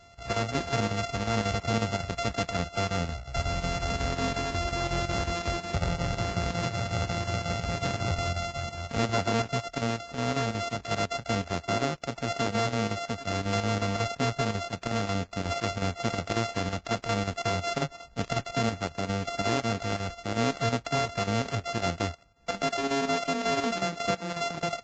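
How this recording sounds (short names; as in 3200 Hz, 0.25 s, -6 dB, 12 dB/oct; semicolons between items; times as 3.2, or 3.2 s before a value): a buzz of ramps at a fixed pitch in blocks of 64 samples; chopped level 5.5 Hz, depth 60%, duty 80%; Vorbis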